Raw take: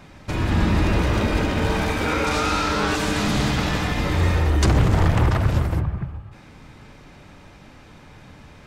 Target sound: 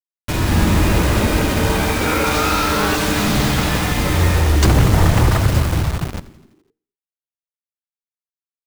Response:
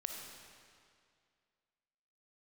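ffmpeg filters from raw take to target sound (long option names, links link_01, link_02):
-filter_complex "[0:a]acrusher=bits=4:mix=0:aa=0.000001,asplit=7[link_01][link_02][link_03][link_04][link_05][link_06][link_07];[link_02]adelay=84,afreqshift=-77,volume=-19dB[link_08];[link_03]adelay=168,afreqshift=-154,volume=-22.7dB[link_09];[link_04]adelay=252,afreqshift=-231,volume=-26.5dB[link_10];[link_05]adelay=336,afreqshift=-308,volume=-30.2dB[link_11];[link_06]adelay=420,afreqshift=-385,volume=-34dB[link_12];[link_07]adelay=504,afreqshift=-462,volume=-37.7dB[link_13];[link_01][link_08][link_09][link_10][link_11][link_12][link_13]amix=inputs=7:normalize=0,asplit=2[link_14][link_15];[1:a]atrim=start_sample=2205,afade=type=out:start_time=0.3:duration=0.01,atrim=end_sample=13671[link_16];[link_15][link_16]afir=irnorm=-1:irlink=0,volume=-18.5dB[link_17];[link_14][link_17]amix=inputs=2:normalize=0,volume=3.5dB"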